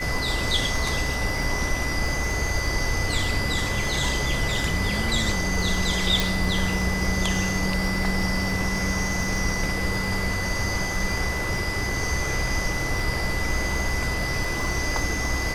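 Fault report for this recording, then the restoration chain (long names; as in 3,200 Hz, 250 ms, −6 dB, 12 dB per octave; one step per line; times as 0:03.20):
surface crackle 53 per second −31 dBFS
whistle 2,000 Hz −29 dBFS
0:06.20: click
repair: click removal
notch filter 2,000 Hz, Q 30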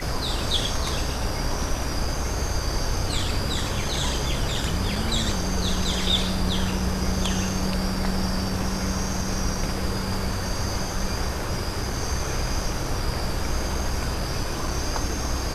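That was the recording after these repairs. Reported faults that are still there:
none of them is left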